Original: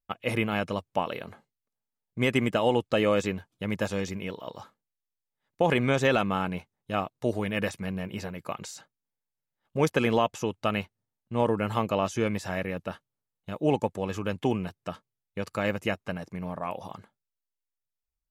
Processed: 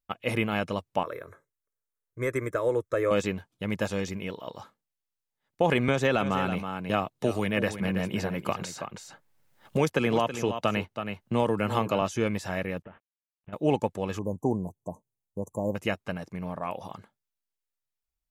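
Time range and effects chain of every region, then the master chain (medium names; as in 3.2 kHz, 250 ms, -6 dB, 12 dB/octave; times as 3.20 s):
1.03–3.11 s: Butterworth band-stop 4.6 kHz, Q 3.2 + static phaser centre 790 Hz, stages 6
5.88–12.02 s: delay 325 ms -12 dB + three bands compressed up and down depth 70%
12.82–13.53 s: CVSD coder 16 kbps + compression 8:1, threshold -40 dBFS + distance through air 330 m
14.19–15.75 s: brick-wall FIR band-stop 1.1–5.9 kHz + peaking EQ 2.1 kHz -7 dB 1.6 oct
whole clip: none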